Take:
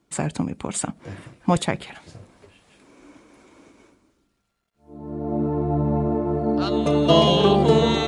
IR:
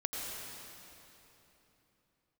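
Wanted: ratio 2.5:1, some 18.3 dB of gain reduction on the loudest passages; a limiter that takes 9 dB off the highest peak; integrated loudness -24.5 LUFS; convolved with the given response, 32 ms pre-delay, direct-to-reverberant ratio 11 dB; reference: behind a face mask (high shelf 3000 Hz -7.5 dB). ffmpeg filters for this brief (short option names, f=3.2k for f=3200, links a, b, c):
-filter_complex "[0:a]acompressor=threshold=-40dB:ratio=2.5,alimiter=level_in=6dB:limit=-24dB:level=0:latency=1,volume=-6dB,asplit=2[a][b];[1:a]atrim=start_sample=2205,adelay=32[c];[b][c]afir=irnorm=-1:irlink=0,volume=-14.5dB[d];[a][d]amix=inputs=2:normalize=0,highshelf=f=3k:g=-7.5,volume=16dB"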